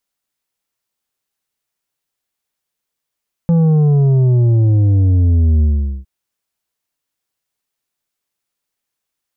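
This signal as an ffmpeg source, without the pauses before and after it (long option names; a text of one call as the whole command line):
ffmpeg -f lavfi -i "aevalsrc='0.335*clip((2.56-t)/0.43,0,1)*tanh(2.24*sin(2*PI*170*2.56/log(65/170)*(exp(log(65/170)*t/2.56)-1)))/tanh(2.24)':duration=2.56:sample_rate=44100" out.wav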